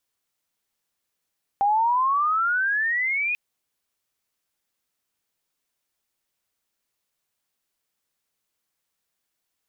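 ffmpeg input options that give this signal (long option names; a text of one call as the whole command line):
ffmpeg -f lavfi -i "aevalsrc='pow(10,(-17-5*t/1.74)/20)*sin(2*PI*790*1.74/log(2500/790)*(exp(log(2500/790)*t/1.74)-1))':duration=1.74:sample_rate=44100" out.wav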